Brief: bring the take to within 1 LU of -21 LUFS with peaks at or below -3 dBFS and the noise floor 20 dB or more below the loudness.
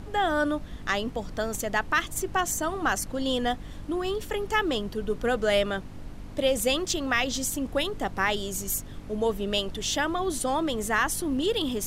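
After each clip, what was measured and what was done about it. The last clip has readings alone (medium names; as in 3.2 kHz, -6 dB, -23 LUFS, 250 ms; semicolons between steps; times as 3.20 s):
hum 50 Hz; highest harmonic 300 Hz; hum level -44 dBFS; noise floor -41 dBFS; noise floor target -48 dBFS; loudness -27.5 LUFS; peak level -11.5 dBFS; loudness target -21.0 LUFS
-> de-hum 50 Hz, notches 6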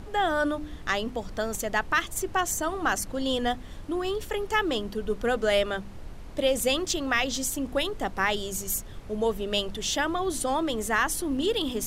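hum not found; noise floor -41 dBFS; noise floor target -48 dBFS
-> noise print and reduce 7 dB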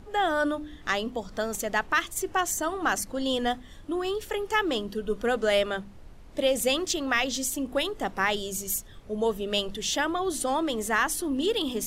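noise floor -47 dBFS; noise floor target -48 dBFS
-> noise print and reduce 6 dB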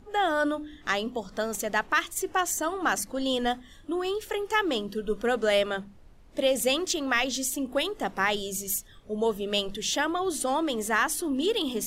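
noise floor -52 dBFS; loudness -27.5 LUFS; peak level -12.0 dBFS; loudness target -21.0 LUFS
-> trim +6.5 dB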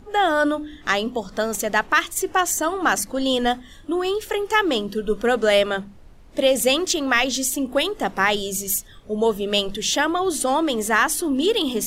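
loudness -21.5 LUFS; peak level -5.5 dBFS; noise floor -45 dBFS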